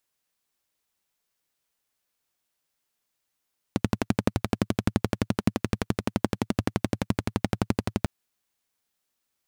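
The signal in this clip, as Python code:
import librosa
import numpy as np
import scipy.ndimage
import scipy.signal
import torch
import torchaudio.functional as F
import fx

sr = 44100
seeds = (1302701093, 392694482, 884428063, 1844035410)

y = fx.engine_single(sr, seeds[0], length_s=4.3, rpm=1400, resonances_hz=(110.0, 200.0))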